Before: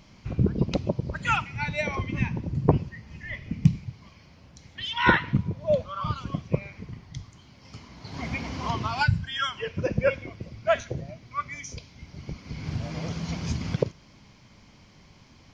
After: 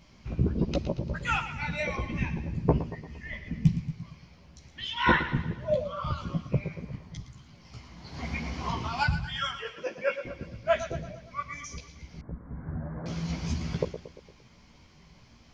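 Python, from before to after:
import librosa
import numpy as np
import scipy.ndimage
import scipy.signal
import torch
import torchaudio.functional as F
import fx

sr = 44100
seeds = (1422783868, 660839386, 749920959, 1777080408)

y = fx.highpass(x, sr, hz=510.0, slope=12, at=(9.55, 10.25))
y = fx.echo_feedback(y, sr, ms=115, feedback_pct=52, wet_db=-12.0)
y = fx.chorus_voices(y, sr, voices=6, hz=1.2, base_ms=15, depth_ms=3.0, mix_pct=45)
y = fx.ellip_lowpass(y, sr, hz=1700.0, order=4, stop_db=40, at=(12.21, 13.06))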